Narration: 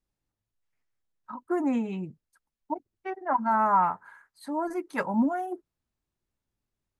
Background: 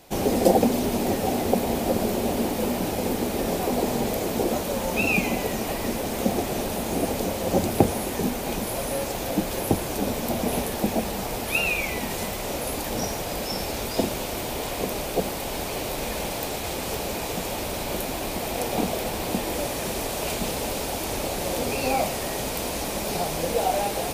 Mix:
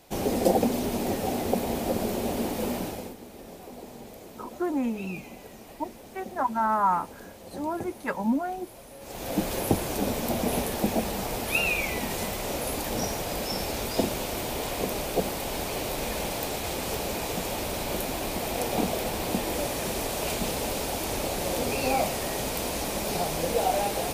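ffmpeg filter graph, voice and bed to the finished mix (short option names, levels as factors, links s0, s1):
-filter_complex "[0:a]adelay=3100,volume=0.891[s0];[1:a]volume=4.47,afade=t=out:st=2.75:d=0.4:silence=0.188365,afade=t=in:st=9:d=0.43:silence=0.141254[s1];[s0][s1]amix=inputs=2:normalize=0"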